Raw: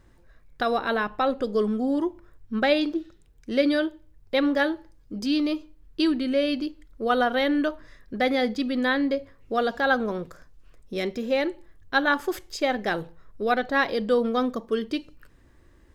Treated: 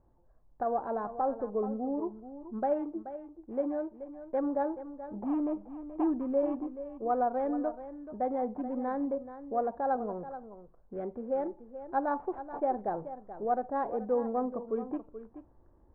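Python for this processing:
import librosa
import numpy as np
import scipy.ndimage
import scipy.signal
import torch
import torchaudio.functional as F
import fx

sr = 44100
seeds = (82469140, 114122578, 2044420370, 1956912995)

y = fx.rider(x, sr, range_db=10, speed_s=2.0)
y = y + 10.0 ** (-12.5 / 20.0) * np.pad(y, (int(430 * sr / 1000.0), 0))[:len(y)]
y = np.repeat(y[::8], 8)[:len(y)]
y = fx.ladder_lowpass(y, sr, hz=980.0, resonance_pct=50)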